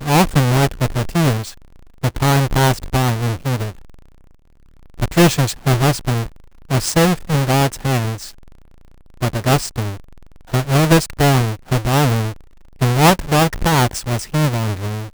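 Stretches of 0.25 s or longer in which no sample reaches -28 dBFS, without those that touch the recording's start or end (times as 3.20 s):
1.50–2.03 s
3.70–5.00 s
6.27–6.71 s
8.29–9.22 s
9.95–10.53 s
12.32–12.81 s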